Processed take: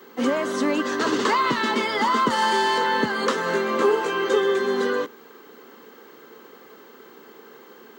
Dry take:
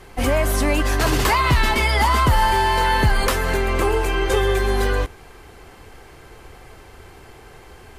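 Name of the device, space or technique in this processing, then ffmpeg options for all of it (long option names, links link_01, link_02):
old television with a line whistle: -filter_complex "[0:a]asettb=1/sr,asplit=3[link_01][link_02][link_03];[link_01]atrim=end=0.674[link_04];[link_02]atrim=start=0.67:end=1.29,asetpts=PTS-STARTPTS,afade=type=in:duration=0.004:curve=qsin,afade=type=out:start_time=0.616:duration=0.004:curve=qsin,lowpass=10000[link_05];[link_03]atrim=start=1.286[link_06];[link_04][link_05]acrossfade=duration=0.004:curve1=hsin:curve2=qsin[link_07];[link_07][link_06]acrossfade=duration=0.004:curve1=qsin:curve2=hsin,asettb=1/sr,asplit=3[link_08][link_09][link_10];[link_08]atrim=end=2.304[link_11];[link_09]atrim=start=2.3:end=2.78,asetpts=PTS-STARTPTS,afade=type=in:duration=0.004:curve=qsin,afade=type=out:start_time=0.476:duration=0.004:curve=qsin,highshelf=frequency=3900:gain=10.5[link_12];[link_10]atrim=start=2.776[link_13];[link_11][link_12]acrossfade=duration=0.004:curve1=hsin:curve2=qsin[link_14];[link_14][link_13]acrossfade=duration=0.004:curve1=qsin:curve2=hsin,highpass=frequency=220:width=0.5412,highpass=frequency=220:width=1.3066,equalizer=frequency=230:width_type=q:width=4:gain=8,equalizer=frequency=460:width_type=q:width=4:gain=5,equalizer=frequency=720:width_type=q:width=4:gain=-10,equalizer=frequency=1200:width_type=q:width=4:gain=3,equalizer=frequency=2400:width_type=q:width=4:gain=-9,equalizer=frequency=5100:width_type=q:width=4:gain=-5,lowpass=frequency=6700:width=0.5412,lowpass=frequency=6700:width=1.3066,aeval=exprs='val(0)+0.00251*sin(2*PI*15734*n/s)':channel_layout=same,asettb=1/sr,asplit=3[link_15][link_16][link_17];[link_15]atrim=end=3.364[link_18];[link_16]atrim=start=3.36:end=4.29,asetpts=PTS-STARTPTS,afade=type=in:duration=0.004:curve=qsin,afade=type=out:start_time=0.926:duration=0.004:curve=qsin,asplit=2[link_19][link_20];[link_20]adelay=17,volume=-3dB[link_21];[link_19][link_21]amix=inputs=2:normalize=0,atrim=end_sample=41013[link_22];[link_17]atrim=start=4.286[link_23];[link_18][link_22]acrossfade=duration=0.004:curve1=hsin:curve2=qsin[link_24];[link_24][link_23]acrossfade=duration=0.004:curve1=qsin:curve2=hsin,volume=-1.5dB"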